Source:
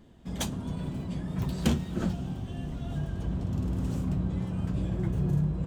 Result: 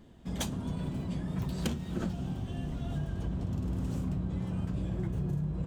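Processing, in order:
downward compressor, threshold −29 dBFS, peak gain reduction 10 dB

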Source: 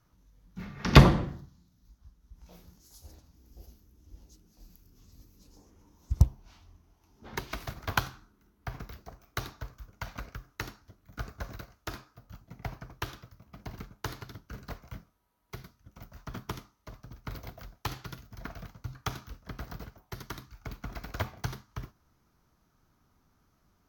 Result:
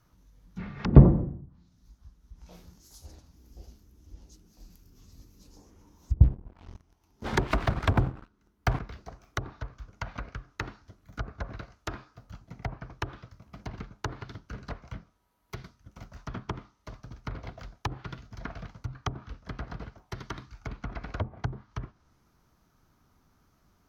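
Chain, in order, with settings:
treble cut that deepens with the level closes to 460 Hz, closed at −30.5 dBFS
0:06.23–0:08.79: leveller curve on the samples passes 3
level +3 dB

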